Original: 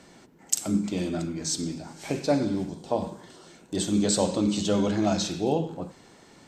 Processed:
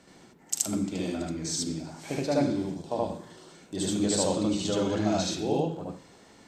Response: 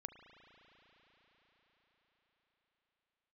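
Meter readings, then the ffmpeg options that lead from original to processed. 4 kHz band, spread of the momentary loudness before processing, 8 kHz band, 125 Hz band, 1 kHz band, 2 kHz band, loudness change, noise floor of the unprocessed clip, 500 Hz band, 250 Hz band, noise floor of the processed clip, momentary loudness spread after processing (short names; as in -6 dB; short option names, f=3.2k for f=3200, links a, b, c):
-1.5 dB, 11 LU, -1.5 dB, -2.0 dB, -1.5 dB, -1.0 dB, -2.0 dB, -54 dBFS, -1.5 dB, -2.5 dB, -56 dBFS, 12 LU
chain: -filter_complex "[0:a]asplit=2[a][b];[1:a]atrim=start_sample=2205,atrim=end_sample=4410,adelay=75[c];[b][c]afir=irnorm=-1:irlink=0,volume=8dB[d];[a][d]amix=inputs=2:normalize=0,volume=-5.5dB"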